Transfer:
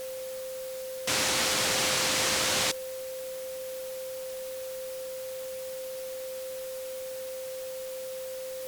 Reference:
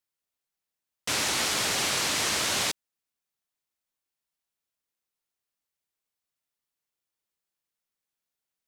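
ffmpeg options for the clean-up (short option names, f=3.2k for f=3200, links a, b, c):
-af "bandreject=f=520:w=30,afwtdn=0.0056,asetnsamples=n=441:p=0,asendcmd='2.74 volume volume -7dB',volume=0dB"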